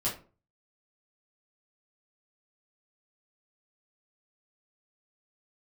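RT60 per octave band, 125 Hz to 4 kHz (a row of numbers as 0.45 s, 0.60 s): 0.50 s, 0.45 s, 0.40 s, 0.35 s, 0.30 s, 0.20 s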